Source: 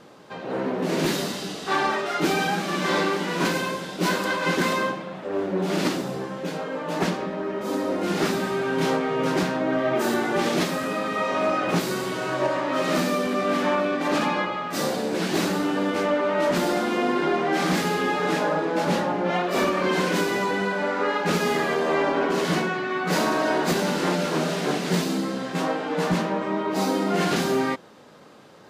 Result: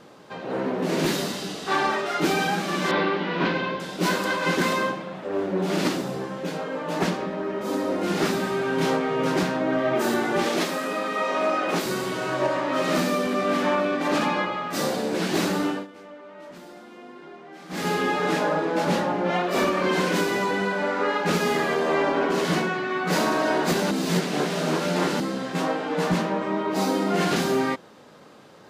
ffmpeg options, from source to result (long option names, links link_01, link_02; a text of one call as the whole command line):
ffmpeg -i in.wav -filter_complex "[0:a]asettb=1/sr,asplit=3[link_01][link_02][link_03];[link_01]atrim=end=2.914[link_04];[link_02]atrim=start=2.91:end=3.8,asetpts=PTS-STARTPTS,afade=type=in:duration=0.004:curve=qsin,afade=type=out:start_time=0.886:duration=0.004:curve=qsin,lowpass=frequency=3800:width=0.5412,lowpass=frequency=3800:width=1.3066[link_05];[link_03]atrim=start=3.796[link_06];[link_04][link_05]acrossfade=duration=0.004:curve1=hsin:curve2=qsin[link_07];[link_07][link_06]acrossfade=duration=0.004:curve1=qsin:curve2=hsin,asettb=1/sr,asplit=3[link_08][link_09][link_10];[link_08]atrim=end=10.444[link_11];[link_09]atrim=start=10.44:end=11.86,asetpts=PTS-STARTPTS,afade=type=in:duration=0.004:curve=qsin,afade=type=out:start_time=1.416:duration=0.004:curve=qsin,highpass=250[link_12];[link_10]atrim=start=11.856[link_13];[link_11][link_12]acrossfade=duration=0.004:curve1=hsin:curve2=qsin[link_14];[link_14][link_13]acrossfade=duration=0.004:curve1=qsin:curve2=hsin,asplit=5[link_15][link_16][link_17][link_18][link_19];[link_15]atrim=end=15.87,asetpts=PTS-STARTPTS,afade=type=out:start_time=15.67:duration=0.2:silence=0.0944061[link_20];[link_16]atrim=start=15.87:end=17.69,asetpts=PTS-STARTPTS,volume=-20.5dB[link_21];[link_17]atrim=start=17.69:end=23.912,asetpts=PTS-STARTPTS,afade=type=in:duration=0.2:silence=0.0944061[link_22];[link_18]atrim=start=23.908:end=25.202,asetpts=PTS-STARTPTS,areverse[link_23];[link_19]atrim=start=25.198[link_24];[link_20][link_21][link_22]concat=n=3:v=0:a=1[link_25];[link_25][link_23]acrossfade=duration=0.004:curve1=hsin:curve2=hsin[link_26];[link_26][link_24]acrossfade=duration=0.004:curve1=hsin:curve2=hsin" out.wav